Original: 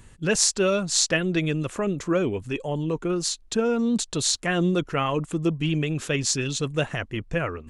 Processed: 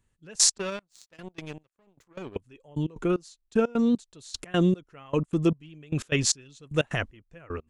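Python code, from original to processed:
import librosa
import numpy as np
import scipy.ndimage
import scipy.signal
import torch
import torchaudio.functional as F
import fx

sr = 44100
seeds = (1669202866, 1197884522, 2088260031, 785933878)

y = fx.power_curve(x, sr, exponent=2.0, at=(0.58, 2.36))
y = fx.step_gate(y, sr, bpm=152, pattern='....x.xx', floor_db=-24.0, edge_ms=4.5)
y = F.gain(torch.from_numpy(y), 1.0).numpy()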